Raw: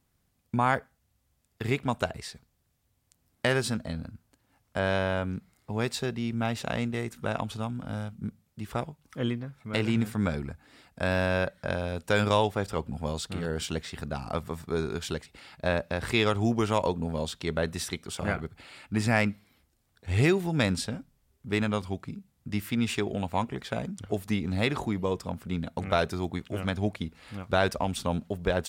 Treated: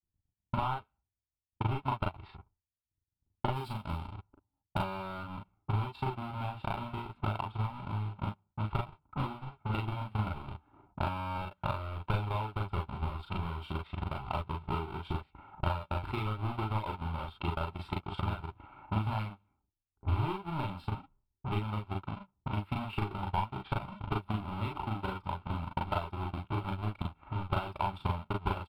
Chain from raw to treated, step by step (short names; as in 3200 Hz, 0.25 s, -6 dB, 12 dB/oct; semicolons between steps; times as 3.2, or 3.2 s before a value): half-waves squared off; compressor 3:1, threshold -34 dBFS, peak gain reduction 14.5 dB; low-pass opened by the level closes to 390 Hz, open at -31.5 dBFS; tone controls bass -6 dB, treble -15 dB, from 3.52 s treble -2 dB, from 4.77 s treble -12 dB; expander -60 dBFS; comb 2.2 ms, depth 44%; transient shaper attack +9 dB, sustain -8 dB; high shelf 3200 Hz -11.5 dB; fixed phaser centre 1800 Hz, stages 6; early reflections 37 ms -3 dB, 47 ms -6.5 dB